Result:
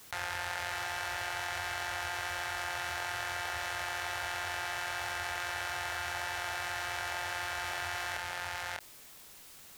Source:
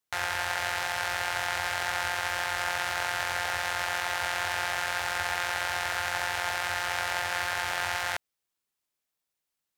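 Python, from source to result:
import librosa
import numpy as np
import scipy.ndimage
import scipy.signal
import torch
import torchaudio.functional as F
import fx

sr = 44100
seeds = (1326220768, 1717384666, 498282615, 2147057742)

y = fx.low_shelf(x, sr, hz=210.0, db=4.0)
y = fx.doubler(y, sr, ms=26.0, db=-14)
y = y + 10.0 ** (-5.5 / 20.0) * np.pad(y, (int(597 * sr / 1000.0), 0))[:len(y)]
y = fx.env_flatten(y, sr, amount_pct=70)
y = y * librosa.db_to_amplitude(-8.5)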